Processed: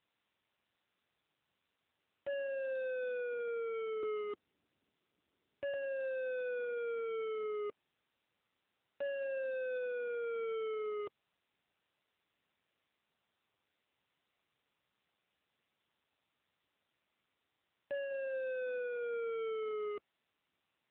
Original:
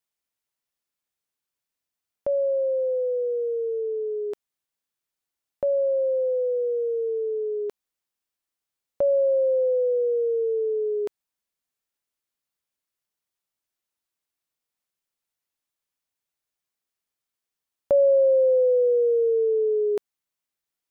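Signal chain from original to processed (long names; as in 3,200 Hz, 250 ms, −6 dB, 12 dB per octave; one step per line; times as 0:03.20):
0:02.32–0:03.48: high-pass filter 46 Hz 12 dB per octave
0:04.03–0:05.74: low shelf with overshoot 510 Hz +9.5 dB, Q 1.5
brickwall limiter −21.5 dBFS, peak gain reduction 8.5 dB
speech leveller 2 s
soft clipping −37 dBFS, distortion −9 dB
level +1.5 dB
AMR narrowband 7.95 kbit/s 8,000 Hz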